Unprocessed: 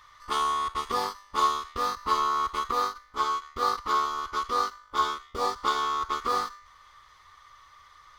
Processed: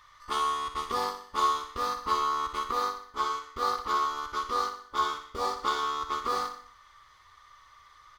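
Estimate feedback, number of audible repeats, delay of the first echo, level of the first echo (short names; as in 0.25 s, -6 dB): 48%, 5, 61 ms, -9.5 dB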